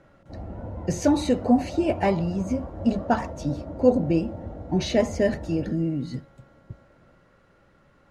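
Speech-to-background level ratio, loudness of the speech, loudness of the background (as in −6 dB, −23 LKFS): 12.0 dB, −25.0 LKFS, −37.0 LKFS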